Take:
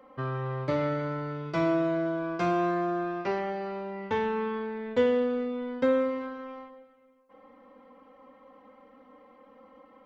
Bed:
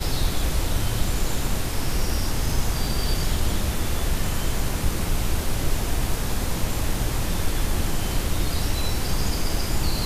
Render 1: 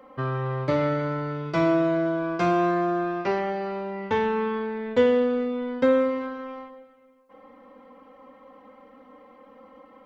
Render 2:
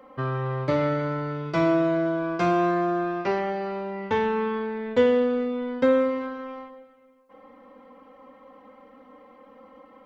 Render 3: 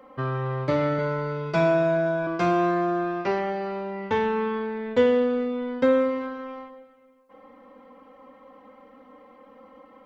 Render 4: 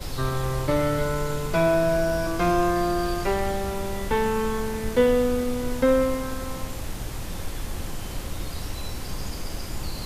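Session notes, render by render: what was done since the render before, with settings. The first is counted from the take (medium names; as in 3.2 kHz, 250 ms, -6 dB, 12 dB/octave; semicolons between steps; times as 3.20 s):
trim +4.5 dB
no audible change
0.98–2.27 s: comb 4.8 ms, depth 69%
add bed -8 dB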